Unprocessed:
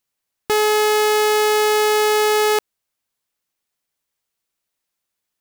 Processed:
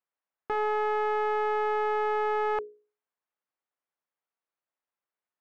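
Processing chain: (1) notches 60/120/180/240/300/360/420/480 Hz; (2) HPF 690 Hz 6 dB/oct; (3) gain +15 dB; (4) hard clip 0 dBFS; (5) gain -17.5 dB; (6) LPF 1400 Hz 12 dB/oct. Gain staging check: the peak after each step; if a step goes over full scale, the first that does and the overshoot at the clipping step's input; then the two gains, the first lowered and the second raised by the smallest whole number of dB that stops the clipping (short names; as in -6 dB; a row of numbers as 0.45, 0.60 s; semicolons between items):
-8.5, -6.5, +8.5, 0.0, -17.5, -19.5 dBFS; step 3, 8.5 dB; step 3 +6 dB, step 5 -8.5 dB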